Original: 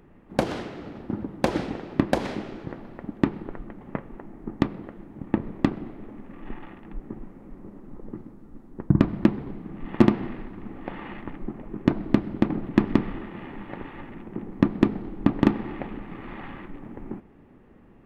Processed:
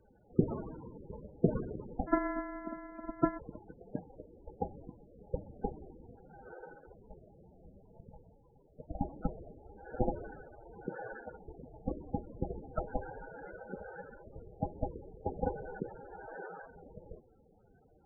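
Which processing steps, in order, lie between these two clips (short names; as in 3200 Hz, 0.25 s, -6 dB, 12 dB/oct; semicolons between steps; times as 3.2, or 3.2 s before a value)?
2.07–3.39 sample sorter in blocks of 128 samples; mistuned SSB -370 Hz 520–2600 Hz; loudest bins only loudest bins 16; gain +1.5 dB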